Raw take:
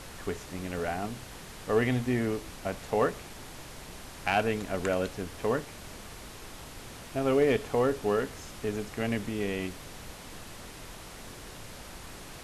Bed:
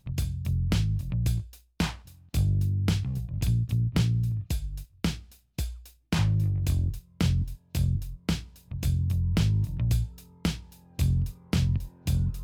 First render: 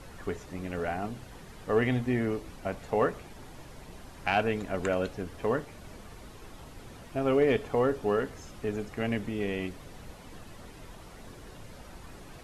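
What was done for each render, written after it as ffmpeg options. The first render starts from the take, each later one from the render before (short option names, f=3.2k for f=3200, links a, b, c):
-af "afftdn=nr=9:nf=-46"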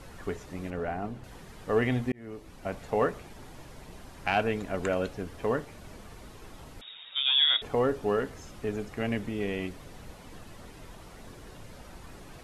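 -filter_complex "[0:a]asettb=1/sr,asplit=3[a][b][c];[a]atrim=end=0.704[d];[b]atrim=start=0.7:end=1.24,asetpts=PTS-STARTPTS,afade=t=in:d=0.004:c=qsin,afade=t=out:st=0.536:d=0.004:c=qsin,highshelf=f=2.8k:g=-11.5[e];[c]atrim=start=1.236[f];[d][e]acrossfade=d=0.004:c1=hsin:c2=qsin[g];[g][f]acrossfade=d=0.004:c1=qsin:c2=hsin,asettb=1/sr,asplit=3[h][i][j];[h]atrim=end=6.814[k];[i]atrim=start=6.81:end=7.62,asetpts=PTS-STARTPTS,afade=t=in:d=0.004:c=qsin,afade=t=out:st=0.806:d=0.004:c=qsin,lowpass=f=3.2k:t=q:w=0.5098,lowpass=f=3.2k:t=q:w=0.6013,lowpass=f=3.2k:t=q:w=0.9,lowpass=f=3.2k:t=q:w=2.563,afreqshift=-3800[l];[j]atrim=start=7.616[m];[k][l]acrossfade=d=0.004:c1=hsin:c2=qsin[n];[n][m]acrossfade=d=0.004:c1=qsin:c2=hsin,asplit=2[o][p];[o]atrim=end=2.12,asetpts=PTS-STARTPTS,afade=t=out:st=2.116:d=0.004:c=hsin[q];[p]atrim=start=2.12,asetpts=PTS-STARTPTS,afade=t=in:d=0.63[r];[q][r]concat=n=2:v=0:a=1"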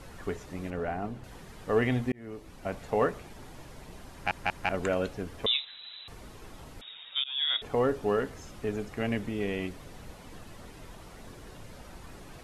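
-filter_complex "[0:a]asettb=1/sr,asplit=3[a][b][c];[a]atrim=end=5.464[d];[b]atrim=start=5.46:end=6.08,asetpts=PTS-STARTPTS,afade=t=in:d=0.004:c=qsin,afade=t=out:st=0.616:d=0.004:c=qsin,lowpass=f=3.4k:t=q:w=0.5098,lowpass=f=3.4k:t=q:w=0.6013,lowpass=f=3.4k:t=q:w=0.9,lowpass=f=3.4k:t=q:w=2.563,afreqshift=-4000[e];[c]atrim=start=6.076[f];[d][e]acrossfade=d=0.004:c1=hsin:c2=qsin[g];[g][f]acrossfade=d=0.004:c1=qsin:c2=hsin,asplit=5[h][i][j][k][l];[h]atrim=end=4.312[m];[i]atrim=start=4.118:end=4.312[n];[j]atrim=start=4.118:end=4.312[o];[k]atrim=start=4.688:end=7.24,asetpts=PTS-STARTPTS,afade=t=out:st=2.548:d=0.004:c=hsin:silence=0.0891251[p];[l]atrim=start=7.24,asetpts=PTS-STARTPTS,afade=t=in:d=0.69:c=qsin:silence=0.0891251[q];[m][n]acrossfade=d=0.004:c1=hsin:c2=hsin[r];[r][o]acrossfade=d=0.004:c1=hsin:c2=hsin[s];[p][q]concat=n=2:v=0:a=1[t];[s][t]acrossfade=d=0.004:c1=hsin:c2=hsin"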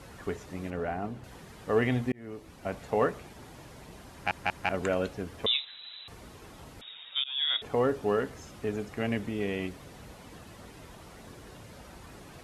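-af "highpass=52"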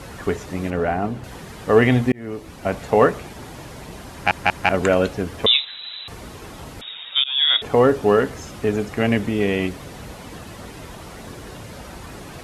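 -af "volume=11.5dB"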